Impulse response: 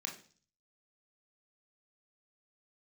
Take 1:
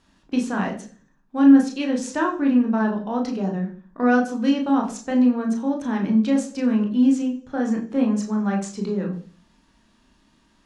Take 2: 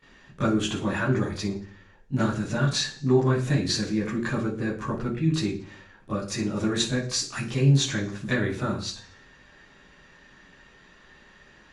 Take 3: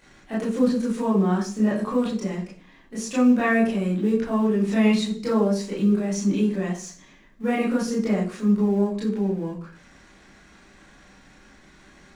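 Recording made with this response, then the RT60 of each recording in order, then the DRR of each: 1; 0.40, 0.40, 0.40 seconds; 1.0, −16.0, −7.5 decibels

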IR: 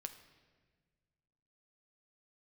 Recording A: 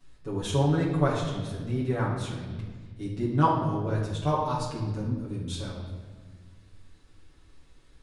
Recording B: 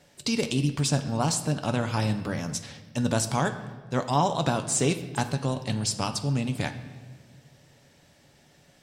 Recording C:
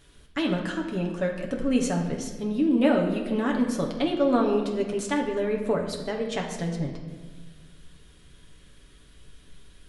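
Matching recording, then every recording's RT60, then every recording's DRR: B; 1.5, 1.5, 1.5 seconds; −8.5, 7.0, 0.0 decibels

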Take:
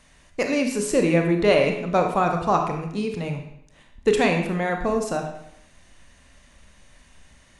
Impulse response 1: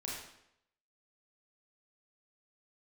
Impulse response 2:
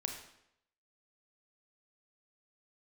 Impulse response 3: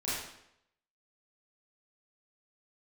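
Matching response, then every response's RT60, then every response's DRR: 2; 0.75, 0.75, 0.75 seconds; −4.5, 3.5, −10.5 decibels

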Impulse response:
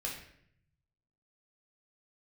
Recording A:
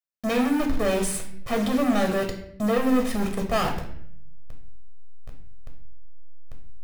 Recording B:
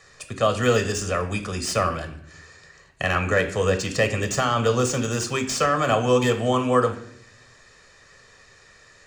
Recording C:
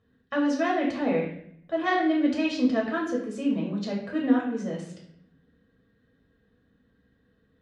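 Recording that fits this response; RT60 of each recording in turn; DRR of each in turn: C; 0.65, 0.65, 0.65 seconds; 1.5, 6.5, −3.0 decibels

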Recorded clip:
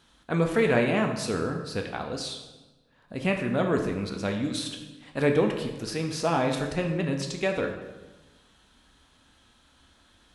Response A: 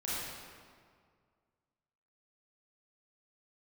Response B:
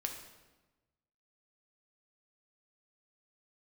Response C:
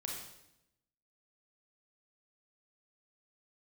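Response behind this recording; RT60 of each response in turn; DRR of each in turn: B; 2.0, 1.1, 0.85 seconds; −9.5, 2.5, −1.5 decibels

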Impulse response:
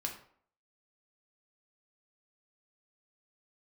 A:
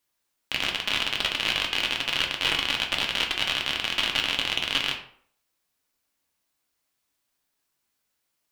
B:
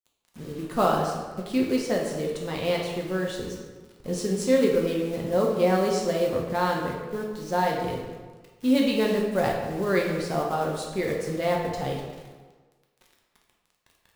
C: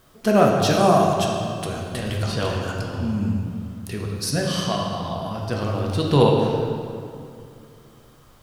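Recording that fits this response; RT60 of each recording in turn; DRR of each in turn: A; 0.60, 1.4, 2.4 seconds; 1.0, −1.5, −1.5 decibels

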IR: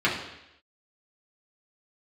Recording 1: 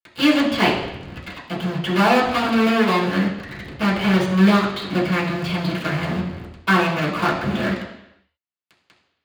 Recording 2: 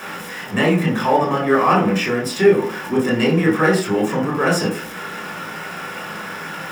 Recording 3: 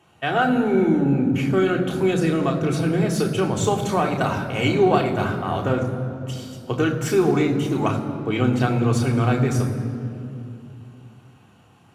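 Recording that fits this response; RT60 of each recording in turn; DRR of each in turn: 1; 0.85, 0.55, 2.8 seconds; −6.5, −4.5, 1.0 decibels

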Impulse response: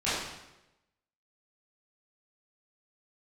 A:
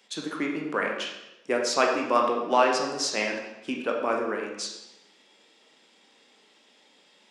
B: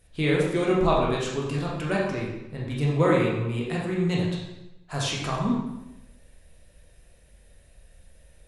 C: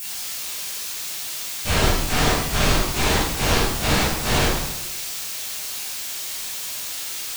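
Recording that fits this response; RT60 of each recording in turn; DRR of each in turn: C; 0.95, 0.95, 0.95 seconds; 0.0, −4.5, −13.5 decibels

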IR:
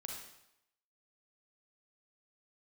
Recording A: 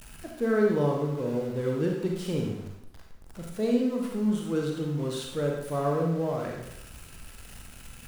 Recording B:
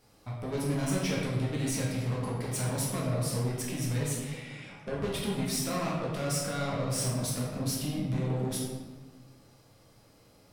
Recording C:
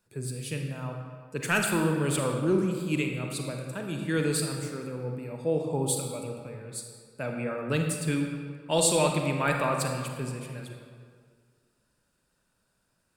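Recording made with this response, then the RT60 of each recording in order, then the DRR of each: A; 0.80, 1.4, 2.0 seconds; −0.5, −5.0, 2.5 decibels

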